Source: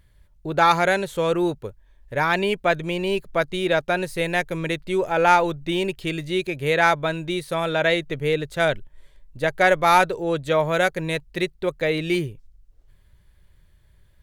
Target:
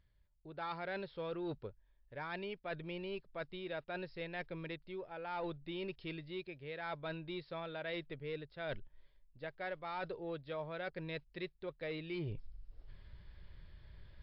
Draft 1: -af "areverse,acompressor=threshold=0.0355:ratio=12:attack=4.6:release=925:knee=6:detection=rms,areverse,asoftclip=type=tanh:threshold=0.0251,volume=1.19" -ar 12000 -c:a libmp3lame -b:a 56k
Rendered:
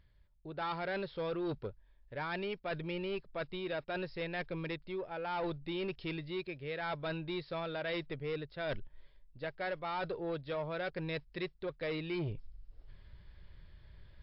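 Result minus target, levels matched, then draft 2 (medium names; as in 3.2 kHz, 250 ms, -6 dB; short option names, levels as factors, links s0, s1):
compression: peak gain reduction -6.5 dB
-af "areverse,acompressor=threshold=0.0158:ratio=12:attack=4.6:release=925:knee=6:detection=rms,areverse,asoftclip=type=tanh:threshold=0.0251,volume=1.19" -ar 12000 -c:a libmp3lame -b:a 56k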